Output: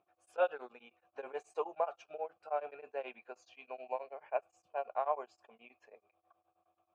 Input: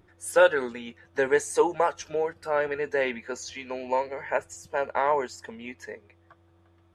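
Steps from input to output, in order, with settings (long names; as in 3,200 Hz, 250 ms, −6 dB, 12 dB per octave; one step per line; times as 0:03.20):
formant filter a
tremolo along a rectified sine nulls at 9.4 Hz
level +1 dB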